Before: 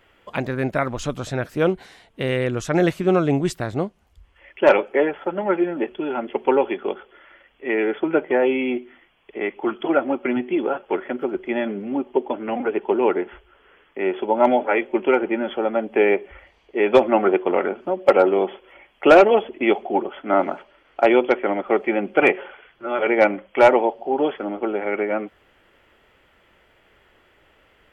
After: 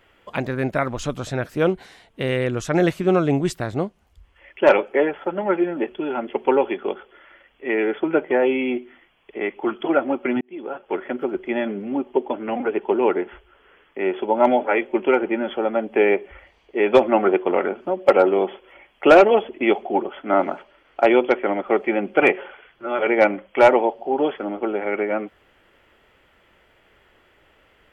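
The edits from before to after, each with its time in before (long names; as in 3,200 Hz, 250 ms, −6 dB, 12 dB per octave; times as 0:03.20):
0:10.41–0:11.08: fade in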